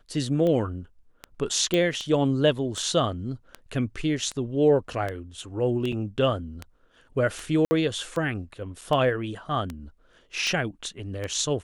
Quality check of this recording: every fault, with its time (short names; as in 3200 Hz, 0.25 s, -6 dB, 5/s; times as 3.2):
tick 78 rpm -18 dBFS
1.74 pop -12 dBFS
5.92–5.93 gap 5.3 ms
7.65–7.71 gap 60 ms
8.81–8.82 gap 5.9 ms